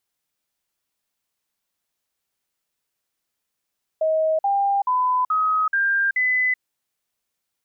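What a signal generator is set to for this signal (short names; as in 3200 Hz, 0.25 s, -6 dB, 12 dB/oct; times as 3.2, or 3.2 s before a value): stepped sine 633 Hz up, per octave 3, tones 6, 0.38 s, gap 0.05 s -17 dBFS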